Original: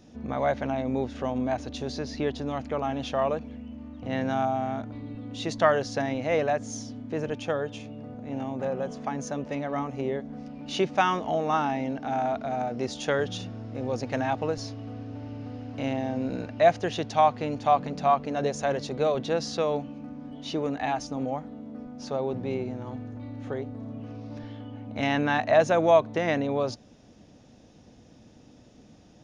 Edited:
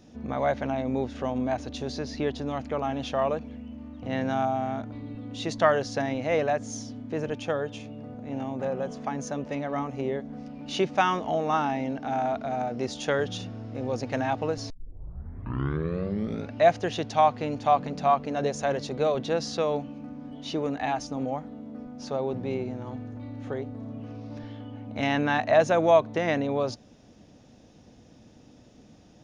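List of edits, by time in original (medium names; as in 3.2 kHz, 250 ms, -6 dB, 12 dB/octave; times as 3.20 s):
14.70 s: tape start 1.85 s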